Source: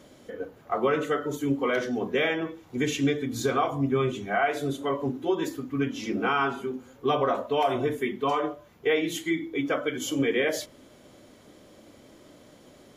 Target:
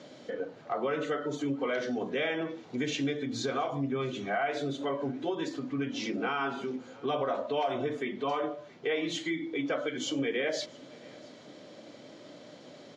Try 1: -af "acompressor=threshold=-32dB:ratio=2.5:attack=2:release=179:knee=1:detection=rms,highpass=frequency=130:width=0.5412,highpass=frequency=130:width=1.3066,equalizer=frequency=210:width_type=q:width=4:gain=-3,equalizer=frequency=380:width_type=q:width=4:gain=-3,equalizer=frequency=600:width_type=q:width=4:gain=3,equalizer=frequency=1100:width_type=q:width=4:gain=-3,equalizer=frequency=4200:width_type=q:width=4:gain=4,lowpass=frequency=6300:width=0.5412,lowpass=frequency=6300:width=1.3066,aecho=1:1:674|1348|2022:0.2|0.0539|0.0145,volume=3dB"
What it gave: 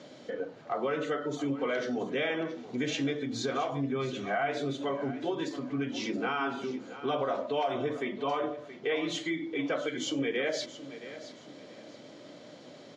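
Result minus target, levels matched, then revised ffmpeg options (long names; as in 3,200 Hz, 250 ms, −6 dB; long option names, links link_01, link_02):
echo-to-direct +10.5 dB
-af "acompressor=threshold=-32dB:ratio=2.5:attack=2:release=179:knee=1:detection=rms,highpass=frequency=130:width=0.5412,highpass=frequency=130:width=1.3066,equalizer=frequency=210:width_type=q:width=4:gain=-3,equalizer=frequency=380:width_type=q:width=4:gain=-3,equalizer=frequency=600:width_type=q:width=4:gain=3,equalizer=frequency=1100:width_type=q:width=4:gain=-3,equalizer=frequency=4200:width_type=q:width=4:gain=4,lowpass=frequency=6300:width=0.5412,lowpass=frequency=6300:width=1.3066,aecho=1:1:674|1348:0.0596|0.0161,volume=3dB"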